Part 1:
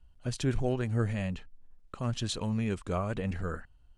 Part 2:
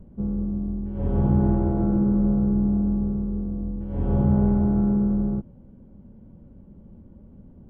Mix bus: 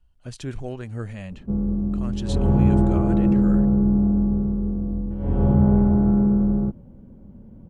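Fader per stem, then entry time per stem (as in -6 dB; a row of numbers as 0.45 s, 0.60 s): -2.5 dB, +3.0 dB; 0.00 s, 1.30 s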